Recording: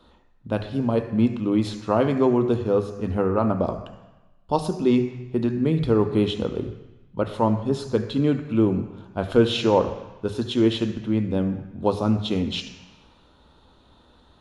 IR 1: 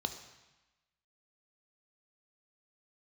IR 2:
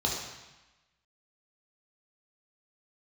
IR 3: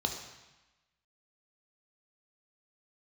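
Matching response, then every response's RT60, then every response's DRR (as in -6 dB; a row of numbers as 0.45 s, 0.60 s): 1; 1.1 s, 1.1 s, 1.1 s; 7.0 dB, -3.0 dB, 3.0 dB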